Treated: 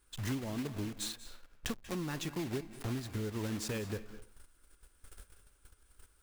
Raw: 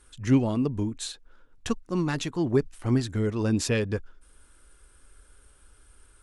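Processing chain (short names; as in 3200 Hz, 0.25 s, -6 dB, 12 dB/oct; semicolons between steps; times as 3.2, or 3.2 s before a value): block floating point 3-bit; gate -50 dBFS, range -15 dB; compressor 5:1, threshold -39 dBFS, peak gain reduction 21 dB; reverb RT60 0.40 s, pre-delay 0.183 s, DRR 12.5 dB; gain +2.5 dB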